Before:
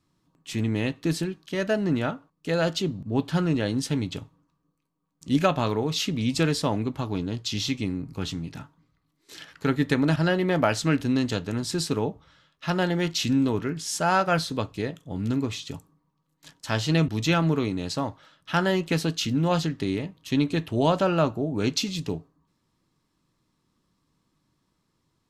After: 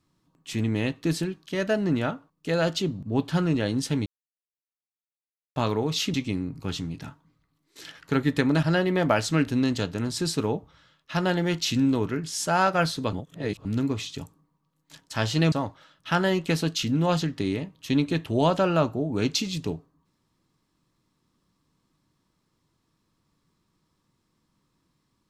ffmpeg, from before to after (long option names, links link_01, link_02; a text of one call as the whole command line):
ffmpeg -i in.wav -filter_complex "[0:a]asplit=7[link_01][link_02][link_03][link_04][link_05][link_06][link_07];[link_01]atrim=end=4.06,asetpts=PTS-STARTPTS,afade=type=out:start_time=4.056:duration=0.004:curve=hsin[link_08];[link_02]atrim=start=4.06:end=5.56,asetpts=PTS-STARTPTS,volume=0[link_09];[link_03]atrim=start=5.56:end=6.142,asetpts=PTS-STARTPTS,afade=type=in:duration=0.004:curve=hsin[link_10];[link_04]atrim=start=7.668:end=14.662[link_11];[link_05]atrim=start=14.658:end=15.182,asetpts=PTS-STARTPTS,areverse[link_12];[link_06]atrim=start=15.178:end=17.052[link_13];[link_07]atrim=start=17.938[link_14];[link_08][link_09][link_10]concat=n=3:v=0:a=1[link_15];[link_15][link_11]acrossfade=duration=0.004:curve1=hsin:curve2=hsin[link_16];[link_16][link_12]acrossfade=duration=0.004:curve1=hsin:curve2=hsin[link_17];[link_17][link_13]acrossfade=duration=0.004:curve1=hsin:curve2=hsin[link_18];[link_18][link_14]acrossfade=duration=0.004:curve1=hsin:curve2=hsin" out.wav